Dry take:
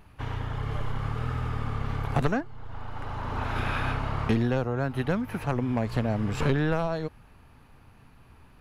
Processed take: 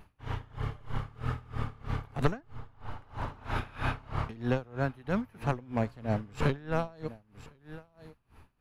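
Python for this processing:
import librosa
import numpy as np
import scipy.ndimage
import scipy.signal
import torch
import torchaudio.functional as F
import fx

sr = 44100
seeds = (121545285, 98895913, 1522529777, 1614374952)

p1 = x + fx.echo_single(x, sr, ms=1056, db=-17.0, dry=0)
y = p1 * 10.0 ** (-24 * (0.5 - 0.5 * np.cos(2.0 * np.pi * 3.1 * np.arange(len(p1)) / sr)) / 20.0)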